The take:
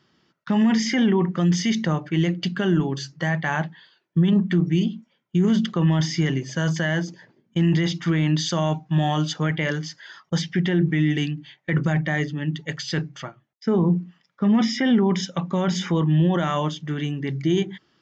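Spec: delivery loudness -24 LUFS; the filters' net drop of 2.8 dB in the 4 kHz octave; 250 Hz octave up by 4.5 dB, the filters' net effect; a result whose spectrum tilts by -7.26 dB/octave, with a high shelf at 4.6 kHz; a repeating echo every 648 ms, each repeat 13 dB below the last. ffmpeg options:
-af "equalizer=f=250:t=o:g=6.5,equalizer=f=4000:t=o:g=-6.5,highshelf=f=4600:g=4.5,aecho=1:1:648|1296|1944:0.224|0.0493|0.0108,volume=0.562"

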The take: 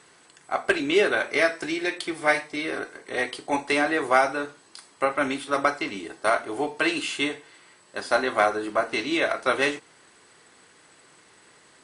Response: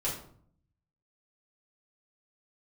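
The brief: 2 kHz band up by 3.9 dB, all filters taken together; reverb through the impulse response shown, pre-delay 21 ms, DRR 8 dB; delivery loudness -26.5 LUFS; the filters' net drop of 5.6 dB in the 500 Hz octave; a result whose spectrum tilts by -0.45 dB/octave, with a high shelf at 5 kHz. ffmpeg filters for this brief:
-filter_complex "[0:a]equalizer=f=500:t=o:g=-8,equalizer=f=2000:t=o:g=6.5,highshelf=f=5000:g=-7,asplit=2[s0][s1];[1:a]atrim=start_sample=2205,adelay=21[s2];[s1][s2]afir=irnorm=-1:irlink=0,volume=0.211[s3];[s0][s3]amix=inputs=2:normalize=0,volume=0.708"

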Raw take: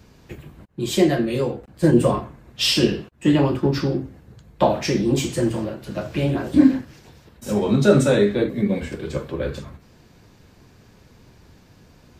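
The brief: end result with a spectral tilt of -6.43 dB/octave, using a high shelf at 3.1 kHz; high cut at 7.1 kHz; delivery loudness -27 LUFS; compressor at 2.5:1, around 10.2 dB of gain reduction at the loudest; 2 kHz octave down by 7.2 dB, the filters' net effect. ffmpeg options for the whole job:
-af "lowpass=7100,equalizer=f=2000:t=o:g=-7.5,highshelf=f=3100:g=-7,acompressor=threshold=0.0562:ratio=2.5,volume=1.12"

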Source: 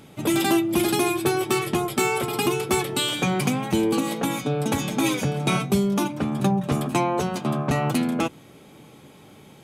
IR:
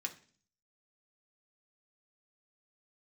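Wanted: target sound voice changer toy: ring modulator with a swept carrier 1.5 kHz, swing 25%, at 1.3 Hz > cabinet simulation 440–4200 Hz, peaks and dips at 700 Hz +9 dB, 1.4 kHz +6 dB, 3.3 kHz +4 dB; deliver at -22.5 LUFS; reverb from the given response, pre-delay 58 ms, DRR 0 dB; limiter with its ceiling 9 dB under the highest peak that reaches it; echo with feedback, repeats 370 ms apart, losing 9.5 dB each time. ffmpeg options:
-filter_complex "[0:a]alimiter=limit=0.126:level=0:latency=1,aecho=1:1:370|740|1110|1480:0.335|0.111|0.0365|0.012,asplit=2[s0][s1];[1:a]atrim=start_sample=2205,adelay=58[s2];[s1][s2]afir=irnorm=-1:irlink=0,volume=1.06[s3];[s0][s3]amix=inputs=2:normalize=0,aeval=exprs='val(0)*sin(2*PI*1500*n/s+1500*0.25/1.3*sin(2*PI*1.3*n/s))':c=same,highpass=440,equalizer=f=700:t=q:w=4:g=9,equalizer=f=1400:t=q:w=4:g=6,equalizer=f=3300:t=q:w=4:g=4,lowpass=f=4200:w=0.5412,lowpass=f=4200:w=1.3066,volume=1.12"

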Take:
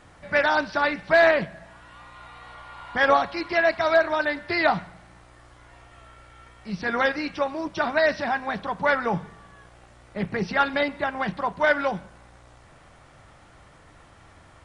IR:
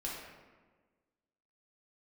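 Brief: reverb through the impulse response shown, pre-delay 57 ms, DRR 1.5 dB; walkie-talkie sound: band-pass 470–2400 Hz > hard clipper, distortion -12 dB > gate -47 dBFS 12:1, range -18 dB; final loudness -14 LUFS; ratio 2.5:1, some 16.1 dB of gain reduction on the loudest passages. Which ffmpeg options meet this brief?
-filter_complex "[0:a]acompressor=threshold=0.0112:ratio=2.5,asplit=2[s0][s1];[1:a]atrim=start_sample=2205,adelay=57[s2];[s1][s2]afir=irnorm=-1:irlink=0,volume=0.708[s3];[s0][s3]amix=inputs=2:normalize=0,highpass=470,lowpass=2400,asoftclip=type=hard:threshold=0.0251,agate=range=0.126:threshold=0.00447:ratio=12,volume=15.8"

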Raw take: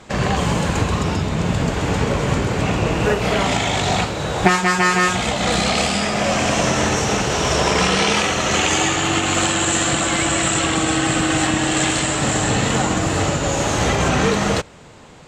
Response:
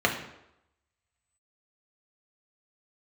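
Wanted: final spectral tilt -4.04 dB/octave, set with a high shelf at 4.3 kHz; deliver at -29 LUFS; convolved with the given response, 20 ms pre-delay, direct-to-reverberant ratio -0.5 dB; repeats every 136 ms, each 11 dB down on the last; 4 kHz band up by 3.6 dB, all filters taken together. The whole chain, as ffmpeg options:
-filter_complex "[0:a]equalizer=f=4000:t=o:g=8,highshelf=f=4300:g=-6,aecho=1:1:136|272|408:0.282|0.0789|0.0221,asplit=2[s0][s1];[1:a]atrim=start_sample=2205,adelay=20[s2];[s1][s2]afir=irnorm=-1:irlink=0,volume=0.2[s3];[s0][s3]amix=inputs=2:normalize=0,volume=0.188"

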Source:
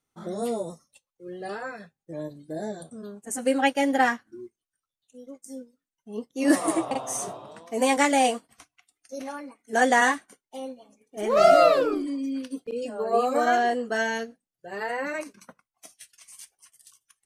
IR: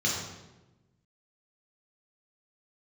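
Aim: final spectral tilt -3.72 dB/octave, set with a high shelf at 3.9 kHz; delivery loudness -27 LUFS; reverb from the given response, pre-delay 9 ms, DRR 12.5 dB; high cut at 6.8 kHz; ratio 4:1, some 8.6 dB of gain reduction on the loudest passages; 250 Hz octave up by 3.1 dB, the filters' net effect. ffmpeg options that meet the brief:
-filter_complex "[0:a]lowpass=6800,equalizer=f=250:t=o:g=3.5,highshelf=f=3900:g=-5,acompressor=threshold=0.0794:ratio=4,asplit=2[s0][s1];[1:a]atrim=start_sample=2205,adelay=9[s2];[s1][s2]afir=irnorm=-1:irlink=0,volume=0.075[s3];[s0][s3]amix=inputs=2:normalize=0,volume=1.26"

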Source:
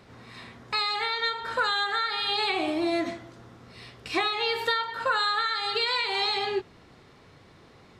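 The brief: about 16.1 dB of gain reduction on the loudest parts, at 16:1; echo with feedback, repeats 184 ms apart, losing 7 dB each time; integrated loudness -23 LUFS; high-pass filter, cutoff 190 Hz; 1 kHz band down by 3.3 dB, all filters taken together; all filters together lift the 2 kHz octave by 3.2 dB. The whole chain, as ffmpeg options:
-af "highpass=190,equalizer=f=1000:t=o:g=-7,equalizer=f=2000:t=o:g=6,acompressor=threshold=0.0141:ratio=16,aecho=1:1:184|368|552|736|920:0.447|0.201|0.0905|0.0407|0.0183,volume=6.31"

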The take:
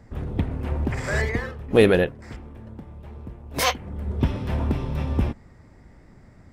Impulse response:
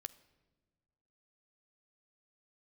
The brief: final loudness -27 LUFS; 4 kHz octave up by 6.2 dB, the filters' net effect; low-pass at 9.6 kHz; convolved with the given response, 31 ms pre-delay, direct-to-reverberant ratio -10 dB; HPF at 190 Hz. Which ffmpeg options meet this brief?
-filter_complex "[0:a]highpass=190,lowpass=9600,equalizer=f=4000:t=o:g=8,asplit=2[s0][s1];[1:a]atrim=start_sample=2205,adelay=31[s2];[s1][s2]afir=irnorm=-1:irlink=0,volume=5.31[s3];[s0][s3]amix=inputs=2:normalize=0,volume=0.224"

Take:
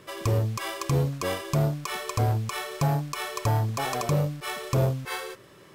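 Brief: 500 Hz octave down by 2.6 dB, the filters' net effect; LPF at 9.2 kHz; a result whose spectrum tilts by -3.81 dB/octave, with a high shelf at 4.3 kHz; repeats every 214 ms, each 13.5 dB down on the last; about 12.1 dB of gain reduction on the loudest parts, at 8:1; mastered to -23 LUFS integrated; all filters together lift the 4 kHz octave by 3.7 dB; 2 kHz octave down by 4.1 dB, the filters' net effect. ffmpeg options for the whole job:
-af "lowpass=9200,equalizer=f=500:t=o:g=-3,equalizer=f=2000:t=o:g=-7.5,equalizer=f=4000:t=o:g=3,highshelf=f=4300:g=7.5,acompressor=threshold=0.0224:ratio=8,aecho=1:1:214|428:0.211|0.0444,volume=4.73"

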